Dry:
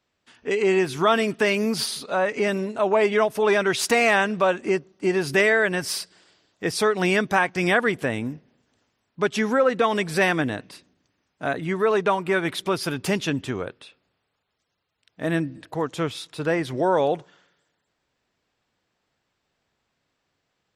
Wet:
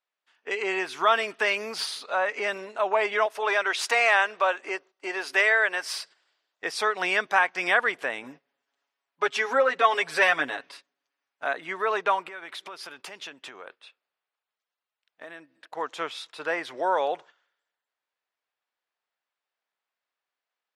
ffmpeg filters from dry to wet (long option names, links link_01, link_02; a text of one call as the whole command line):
ffmpeg -i in.wav -filter_complex "[0:a]asettb=1/sr,asplit=3[link_01][link_02][link_03];[link_01]atrim=end=3.264[link_04];[link_02]atrim=start=3.26:end=5.93,asetpts=PTS-STARTPTS,afade=type=in:duration=0.004:curve=qsin,afade=type=out:start_time=2.666:duration=0.004:curve=qsin,highpass=340[link_05];[link_03]atrim=start=5.926[link_06];[link_04][link_05]acrossfade=duration=0.004:curve1=hsin:curve2=qsin[link_07];[link_07][link_06]acrossfade=duration=0.004:curve1=qsin:curve2=hsin,asettb=1/sr,asplit=3[link_08][link_09][link_10];[link_08]atrim=end=8.234[link_11];[link_09]atrim=start=8.23:end=11.44,asetpts=PTS-STARTPTS,afade=type=in:duration=0.004:curve=qsin,afade=type=out:start_time=3.206:duration=0.004:curve=qsin,aecho=1:1:7.2:0.82,atrim=end_sample=141561[link_12];[link_10]atrim=start=11.436[link_13];[link_11][link_12]acrossfade=duration=0.004:curve1=hsin:curve2=qsin[link_14];[link_14][link_13]acrossfade=duration=0.004:curve1=qsin:curve2=hsin,asettb=1/sr,asplit=3[link_15][link_16][link_17];[link_15]atrim=end=12.284[link_18];[link_16]atrim=start=12.28:end=15.77,asetpts=PTS-STARTPTS,afade=type=in:duration=0.004:curve=qsin,afade=type=out:start_time=3.486:duration=0.004:curve=qsin,acompressor=threshold=-31dB:ratio=16:attack=3.2:release=140:knee=1:detection=peak[link_19];[link_17]atrim=start=15.766[link_20];[link_18][link_19]acrossfade=duration=0.004:curve1=hsin:curve2=qsin[link_21];[link_21][link_20]acrossfade=duration=0.004:curve1=qsin:curve2=hsin,highpass=770,aemphasis=mode=reproduction:type=50kf,agate=range=-11dB:threshold=-49dB:ratio=16:detection=peak,volume=1.5dB" out.wav